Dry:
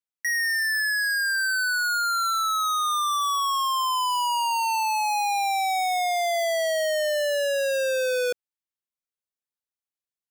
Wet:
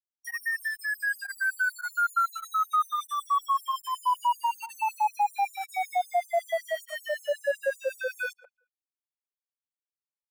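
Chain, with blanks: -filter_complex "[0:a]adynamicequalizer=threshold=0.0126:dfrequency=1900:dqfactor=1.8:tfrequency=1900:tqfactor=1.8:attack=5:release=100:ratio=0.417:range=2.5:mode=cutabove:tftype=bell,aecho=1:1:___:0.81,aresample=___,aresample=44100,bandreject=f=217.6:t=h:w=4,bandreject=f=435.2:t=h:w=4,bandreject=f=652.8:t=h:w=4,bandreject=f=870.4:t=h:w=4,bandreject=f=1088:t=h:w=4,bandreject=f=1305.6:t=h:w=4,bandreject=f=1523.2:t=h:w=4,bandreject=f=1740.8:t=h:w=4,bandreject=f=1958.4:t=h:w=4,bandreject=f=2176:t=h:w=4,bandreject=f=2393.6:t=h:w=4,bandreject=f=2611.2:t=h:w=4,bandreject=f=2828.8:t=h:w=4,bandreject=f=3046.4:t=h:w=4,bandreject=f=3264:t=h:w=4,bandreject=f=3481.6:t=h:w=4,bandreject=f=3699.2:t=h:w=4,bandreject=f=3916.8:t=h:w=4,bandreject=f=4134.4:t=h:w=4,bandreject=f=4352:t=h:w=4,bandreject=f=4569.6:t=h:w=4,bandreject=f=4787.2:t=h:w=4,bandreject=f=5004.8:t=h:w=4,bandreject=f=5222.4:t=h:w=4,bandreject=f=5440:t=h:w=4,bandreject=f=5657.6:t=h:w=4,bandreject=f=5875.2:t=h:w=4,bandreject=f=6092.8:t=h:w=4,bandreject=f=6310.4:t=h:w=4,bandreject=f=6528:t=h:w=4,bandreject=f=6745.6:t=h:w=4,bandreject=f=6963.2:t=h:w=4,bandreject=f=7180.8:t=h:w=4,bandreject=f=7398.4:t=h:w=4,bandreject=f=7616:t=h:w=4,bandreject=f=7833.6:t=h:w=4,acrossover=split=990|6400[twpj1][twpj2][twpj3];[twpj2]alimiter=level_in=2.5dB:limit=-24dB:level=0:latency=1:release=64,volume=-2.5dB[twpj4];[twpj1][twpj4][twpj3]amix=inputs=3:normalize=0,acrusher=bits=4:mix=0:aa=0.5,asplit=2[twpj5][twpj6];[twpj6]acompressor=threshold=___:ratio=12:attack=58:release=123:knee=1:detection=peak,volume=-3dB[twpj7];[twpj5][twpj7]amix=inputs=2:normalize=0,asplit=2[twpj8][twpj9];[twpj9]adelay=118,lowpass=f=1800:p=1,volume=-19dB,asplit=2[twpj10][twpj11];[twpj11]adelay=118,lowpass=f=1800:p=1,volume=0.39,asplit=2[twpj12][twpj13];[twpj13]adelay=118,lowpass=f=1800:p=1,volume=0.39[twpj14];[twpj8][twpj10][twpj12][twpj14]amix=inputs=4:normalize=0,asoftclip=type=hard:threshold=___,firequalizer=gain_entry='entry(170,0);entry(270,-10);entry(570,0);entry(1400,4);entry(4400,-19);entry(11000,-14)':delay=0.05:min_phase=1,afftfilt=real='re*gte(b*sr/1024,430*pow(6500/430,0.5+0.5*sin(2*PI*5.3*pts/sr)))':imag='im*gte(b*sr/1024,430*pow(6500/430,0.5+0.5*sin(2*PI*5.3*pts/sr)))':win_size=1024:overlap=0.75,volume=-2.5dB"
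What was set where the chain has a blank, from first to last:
7.2, 32000, -32dB, -17dB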